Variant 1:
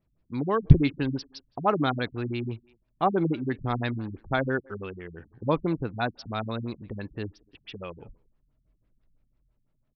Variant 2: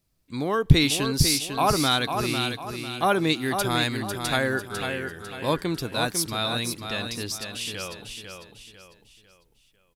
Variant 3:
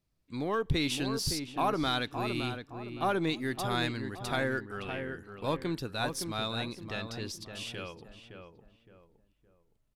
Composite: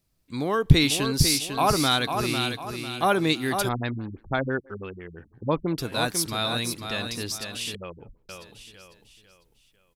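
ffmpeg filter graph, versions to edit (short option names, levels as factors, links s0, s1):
-filter_complex "[0:a]asplit=2[s0][s1];[1:a]asplit=3[s2][s3][s4];[s2]atrim=end=3.692[s5];[s0]atrim=start=3.688:end=5.782[s6];[s3]atrim=start=5.778:end=7.752[s7];[s1]atrim=start=7.748:end=8.292[s8];[s4]atrim=start=8.288[s9];[s5][s6]acrossfade=d=0.004:c1=hsin:c2=hsin[s10];[s10][s7]acrossfade=d=0.004:c1=hsin:c2=hsin[s11];[s11][s8]acrossfade=d=0.004:c1=hsin:c2=hsin[s12];[s12][s9]acrossfade=d=0.004:c1=hsin:c2=hsin"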